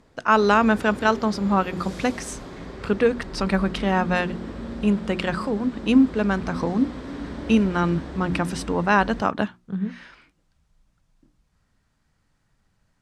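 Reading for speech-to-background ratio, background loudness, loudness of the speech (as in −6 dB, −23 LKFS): 12.5 dB, −35.5 LKFS, −23.0 LKFS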